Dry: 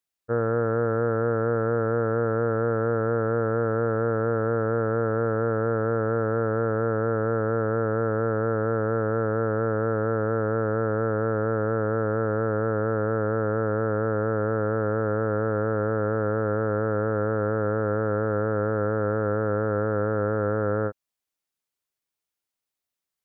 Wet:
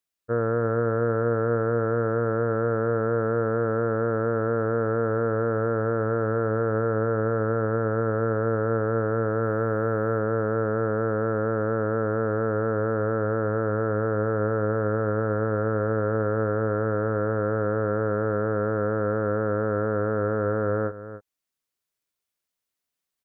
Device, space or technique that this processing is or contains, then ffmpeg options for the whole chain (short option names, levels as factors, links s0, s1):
ducked delay: -filter_complex "[0:a]asplit=3[s0][s1][s2];[s1]adelay=287,volume=0.708[s3];[s2]apad=whole_len=1037824[s4];[s3][s4]sidechaincompress=threshold=0.02:ratio=4:attack=16:release=1070[s5];[s0][s5]amix=inputs=2:normalize=0,bandreject=f=830:w=12,asettb=1/sr,asplit=3[s6][s7][s8];[s6]atrim=end=9.444[s9];[s7]atrim=start=9.44:end=10.19,asetpts=PTS-STARTPTS,afade=t=in:d=0.004:c=qsin,afade=t=out:st=0.746:d=0.004:c=qsin,aemphasis=mode=production:type=50kf[s10];[s8]atrim=start=10.186[s11];[s9][s10]acrossfade=d=0.004:c1=hsin:c2=qsin[s12];[s12][s11]acrossfade=d=0.004:c1=qsin:c2=hsin"